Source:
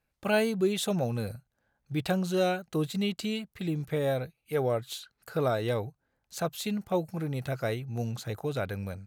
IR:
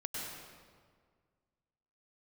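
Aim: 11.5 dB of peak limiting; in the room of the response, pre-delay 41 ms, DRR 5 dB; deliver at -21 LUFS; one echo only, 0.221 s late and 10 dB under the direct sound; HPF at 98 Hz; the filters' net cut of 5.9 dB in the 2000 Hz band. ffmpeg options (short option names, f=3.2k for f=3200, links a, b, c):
-filter_complex "[0:a]highpass=98,equalizer=f=2k:t=o:g=-9,alimiter=level_in=2dB:limit=-24dB:level=0:latency=1,volume=-2dB,aecho=1:1:221:0.316,asplit=2[a][b];[1:a]atrim=start_sample=2205,adelay=41[c];[b][c]afir=irnorm=-1:irlink=0,volume=-7dB[d];[a][d]amix=inputs=2:normalize=0,volume=13dB"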